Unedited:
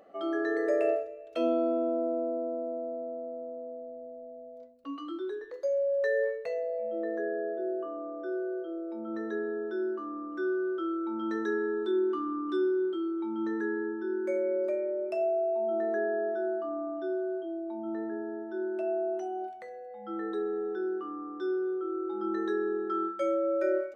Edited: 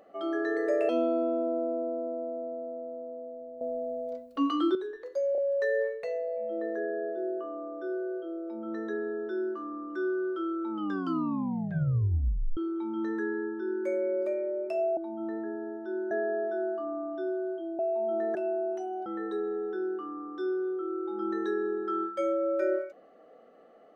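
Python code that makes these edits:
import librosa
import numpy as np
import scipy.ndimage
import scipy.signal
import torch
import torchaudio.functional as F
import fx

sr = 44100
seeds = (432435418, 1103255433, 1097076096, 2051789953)

y = fx.edit(x, sr, fx.cut(start_s=0.89, length_s=0.48),
    fx.clip_gain(start_s=4.09, length_s=1.14, db=11.5),
    fx.stutter(start_s=5.8, slice_s=0.03, count=3),
    fx.tape_stop(start_s=11.13, length_s=1.86),
    fx.swap(start_s=15.39, length_s=0.56, other_s=17.63, other_length_s=1.14),
    fx.cut(start_s=19.48, length_s=0.6), tone=tone)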